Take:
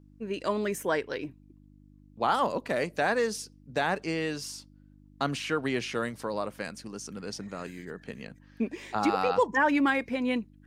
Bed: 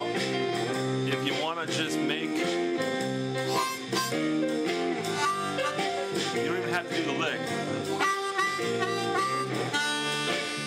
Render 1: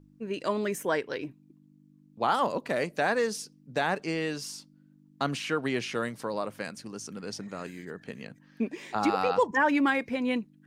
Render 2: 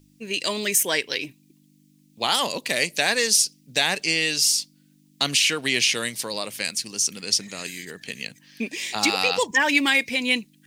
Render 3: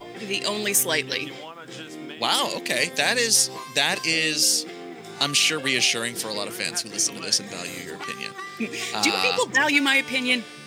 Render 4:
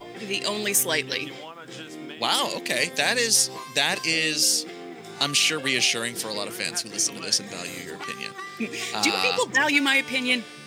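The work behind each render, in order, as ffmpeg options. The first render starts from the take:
-af "bandreject=f=50:t=h:w=4,bandreject=f=100:t=h:w=4"
-af "aexciter=amount=5.6:drive=7.4:freq=2k"
-filter_complex "[1:a]volume=-9dB[a];[0:a][a]amix=inputs=2:normalize=0"
-af "volume=-1dB"

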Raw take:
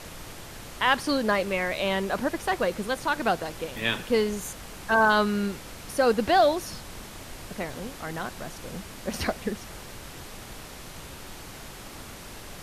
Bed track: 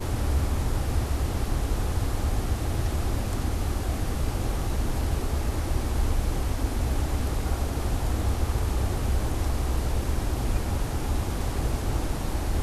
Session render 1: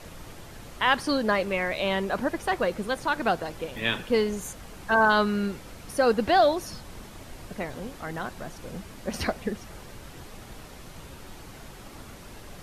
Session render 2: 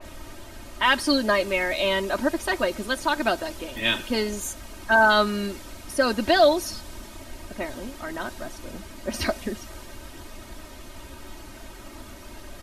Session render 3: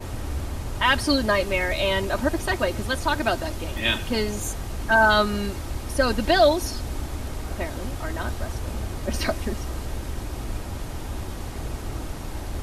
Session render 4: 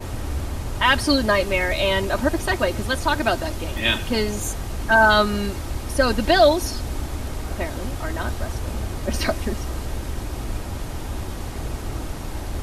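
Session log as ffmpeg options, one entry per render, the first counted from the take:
-af "afftdn=nr=6:nf=-43"
-af "aecho=1:1:3.2:0.75,adynamicequalizer=threshold=0.0126:dfrequency=2900:dqfactor=0.7:tfrequency=2900:tqfactor=0.7:attack=5:release=100:ratio=0.375:range=3:mode=boostabove:tftype=highshelf"
-filter_complex "[1:a]volume=-5dB[a];[0:a][a]amix=inputs=2:normalize=0"
-af "volume=2.5dB"

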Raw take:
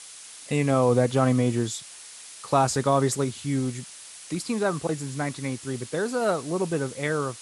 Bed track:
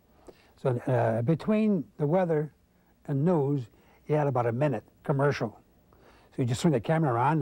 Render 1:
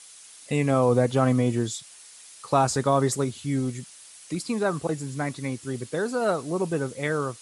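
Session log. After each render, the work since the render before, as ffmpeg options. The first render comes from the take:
-af "afftdn=nr=6:nf=-44"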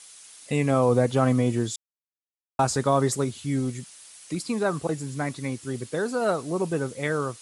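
-filter_complex "[0:a]asplit=3[a][b][c];[a]atrim=end=1.76,asetpts=PTS-STARTPTS,afade=t=out:st=1.756:d=0.004:c=hsin[d];[b]atrim=start=1.76:end=2.59,asetpts=PTS-STARTPTS,volume=0[e];[c]atrim=start=2.59,asetpts=PTS-STARTPTS,afade=t=in:d=0.004:c=hsin[f];[d][e][f]concat=n=3:v=0:a=1"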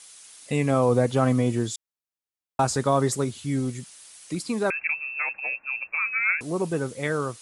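-filter_complex "[0:a]asettb=1/sr,asplit=3[a][b][c];[a]atrim=end=4.704[d];[b]atrim=start=4.7:end=6.41,asetpts=PTS-STARTPTS,afade=t=in:d=0.004:c=qsin,afade=t=out:st=1.706:d=0.004:c=qsin,lowpass=f=2.4k:t=q:w=0.5098,lowpass=f=2.4k:t=q:w=0.6013,lowpass=f=2.4k:t=q:w=0.9,lowpass=f=2.4k:t=q:w=2.563,afreqshift=-2800[e];[c]atrim=start=6.406[f];[d][e]acrossfade=d=0.004:c1=hsin:c2=qsin[g];[g][f]acrossfade=d=0.004:c1=qsin:c2=hsin"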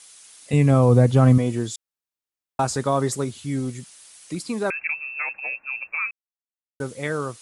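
-filter_complex "[0:a]asettb=1/sr,asplit=3[a][b][c];[a]atrim=end=0.534[d];[b]atrim=start=0.53:end=1.38,asetpts=PTS-STARTPTS,afade=t=in:d=0.004:c=qsin,afade=t=out:st=0.846:d=0.004:c=qsin,equalizer=f=94:w=0.52:g=12[e];[c]atrim=start=1.376[f];[d][e]acrossfade=d=0.004:c1=hsin:c2=qsin[g];[g][f]acrossfade=d=0.004:c1=qsin:c2=hsin,asplit=3[h][i][j];[h]atrim=end=6.11,asetpts=PTS-STARTPTS,afade=t=out:st=6.106:d=0.004:c=hsin[k];[i]atrim=start=6.11:end=6.8,asetpts=PTS-STARTPTS,volume=0[l];[j]atrim=start=6.8,asetpts=PTS-STARTPTS,afade=t=in:d=0.004:c=hsin[m];[k][l][m]concat=n=3:v=0:a=1"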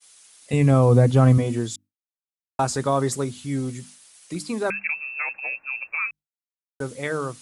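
-af "bandreject=f=50:t=h:w=6,bandreject=f=100:t=h:w=6,bandreject=f=150:t=h:w=6,bandreject=f=200:t=h:w=6,bandreject=f=250:t=h:w=6,bandreject=f=300:t=h:w=6,agate=range=-33dB:threshold=-43dB:ratio=3:detection=peak"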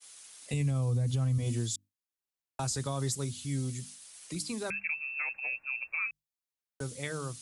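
-filter_complex "[0:a]acrossover=split=140|3000[a][b][c];[b]acompressor=threshold=-59dB:ratio=1.5[d];[a][d][c]amix=inputs=3:normalize=0,alimiter=limit=-23dB:level=0:latency=1:release=104"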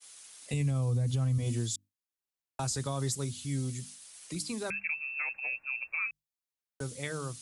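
-af anull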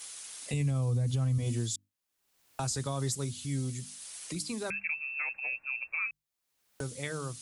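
-af "acompressor=mode=upward:threshold=-36dB:ratio=2.5"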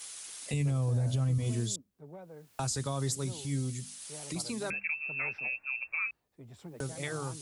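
-filter_complex "[1:a]volume=-23dB[a];[0:a][a]amix=inputs=2:normalize=0"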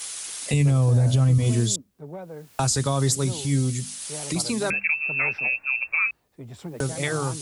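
-af "volume=10.5dB"

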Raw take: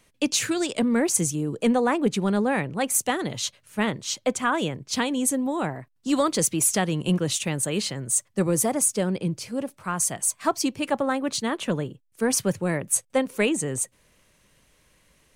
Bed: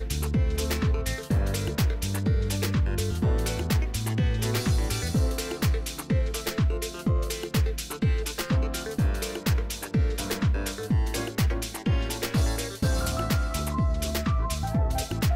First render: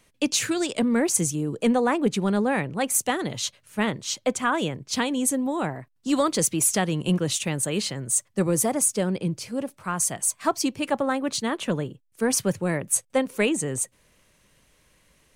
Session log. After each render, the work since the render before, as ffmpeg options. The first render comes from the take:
-af anull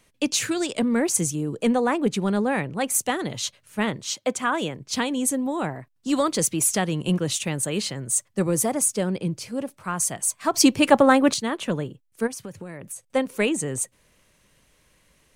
-filter_complex "[0:a]asettb=1/sr,asplit=3[a][b][c];[a]atrim=end=4.104[d];[b]atrim=start=4.1:end=4.79,asetpts=PTS-STARTPTS,afade=t=in:d=0.004:c=qsin,afade=t=out:st=0.686:d=0.004:c=qsin,highpass=f=160:p=1[e];[c]atrim=start=4.786[f];[d][e]acrossfade=d=0.004:c1=hsin:c2=qsin[g];[g][f]acrossfade=d=0.004:c1=qsin:c2=hsin,asplit=3[h][i][j];[h]afade=t=out:st=12.26:d=0.02[k];[i]acompressor=threshold=-32dB:ratio=10:attack=3.2:release=140:knee=1:detection=peak,afade=t=in:st=12.26:d=0.02,afade=t=out:st=13.05:d=0.02[l];[j]afade=t=in:st=13.05:d=0.02[m];[k][l][m]amix=inputs=3:normalize=0,asplit=3[n][o][p];[n]atrim=end=10.542[q];[o]atrim=start=10.538:end=11.342,asetpts=PTS-STARTPTS,volume=9dB[r];[p]atrim=start=11.338[s];[q][r]acrossfade=d=0.004:c1=hsin:c2=hsin[t];[t][s]acrossfade=d=0.004:c1=hsin:c2=hsin"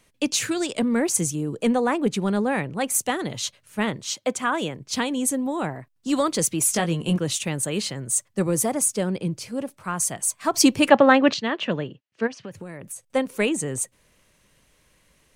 -filter_complex "[0:a]asettb=1/sr,asplit=3[a][b][c];[a]atrim=end=6.674[d];[b]atrim=start=6.67:end=7.16,asetpts=PTS-STARTPTS,afade=t=in:d=0.004:c=qsin,afade=t=out:st=0.486:d=0.004:c=qsin,asplit=2[e][f];[f]adelay=18,volume=-7dB[g];[e][g]amix=inputs=2:normalize=0,atrim=end_sample=21609[h];[c]atrim=start=7.156[i];[d][h]acrossfade=d=0.004:c1=hsin:c2=qsin[j];[j][i]acrossfade=d=0.004:c1=qsin:c2=hsin,asplit=3[k][l][m];[k]afade=t=out:st=10.88:d=0.02[n];[l]highpass=120,equalizer=f=640:t=q:w=4:g=3,equalizer=f=1.8k:t=q:w=4:g=5,equalizer=f=2.8k:t=q:w=4:g=7,lowpass=f=5.2k:w=0.5412,lowpass=f=5.2k:w=1.3066,afade=t=in:st=10.88:d=0.02,afade=t=out:st=12.51:d=0.02[o];[m]afade=t=in:st=12.51:d=0.02[p];[n][o][p]amix=inputs=3:normalize=0"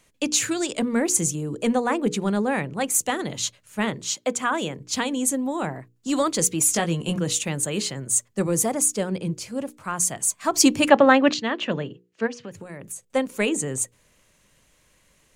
-af "equalizer=f=7k:w=6.1:g=6.5,bandreject=f=60:t=h:w=6,bandreject=f=120:t=h:w=6,bandreject=f=180:t=h:w=6,bandreject=f=240:t=h:w=6,bandreject=f=300:t=h:w=6,bandreject=f=360:t=h:w=6,bandreject=f=420:t=h:w=6,bandreject=f=480:t=h:w=6"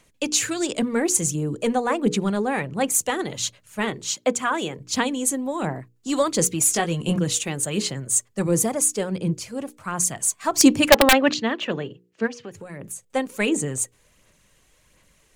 -af "aeval=exprs='(mod(1.68*val(0)+1,2)-1)/1.68':c=same,aphaser=in_gain=1:out_gain=1:delay=2.7:decay=0.35:speed=1.4:type=sinusoidal"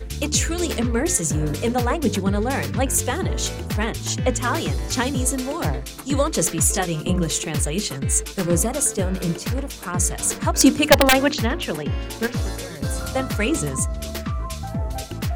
-filter_complex "[1:a]volume=-1dB[a];[0:a][a]amix=inputs=2:normalize=0"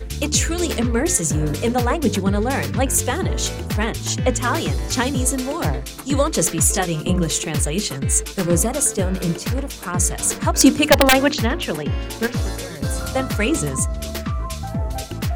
-af "volume=2dB,alimiter=limit=-2dB:level=0:latency=1"

